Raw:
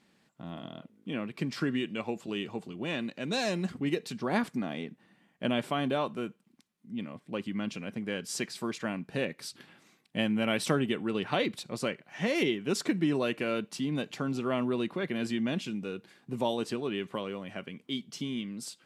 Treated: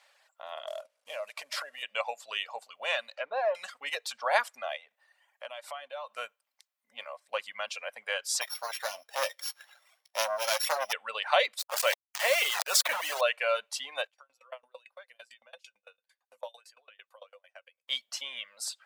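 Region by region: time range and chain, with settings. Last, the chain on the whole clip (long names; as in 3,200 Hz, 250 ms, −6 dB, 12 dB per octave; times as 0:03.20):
0:00.67–0:01.83: variable-slope delta modulation 64 kbit/s + parametric band 610 Hz +13.5 dB 0.23 octaves + downward compressor 12 to 1, threshold −35 dBFS
0:03.15–0:03.55: one scale factor per block 5 bits + low-pass filter 4,800 Hz + treble cut that deepens with the level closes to 1,100 Hz, closed at −31.5 dBFS
0:04.76–0:06.15: notch filter 410 Hz, Q 10 + downward compressor 4 to 1, threshold −43 dBFS
0:08.41–0:10.93: samples sorted by size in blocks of 8 samples + double-tracking delay 15 ms −10 dB + saturating transformer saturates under 1,700 Hz
0:11.59–0:13.21: bit-depth reduction 6 bits, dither none + level that may fall only so fast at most 50 dB per second
0:14.07–0:17.88: parametric band 11,000 Hz +4.5 dB 0.36 octaves + tuned comb filter 510 Hz, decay 0.16 s, harmonics odd, mix 80% + tremolo with a ramp in dB decaying 8.9 Hz, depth 25 dB
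whole clip: reverb reduction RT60 1 s; elliptic high-pass filter 560 Hz, stop band 40 dB; level +7.5 dB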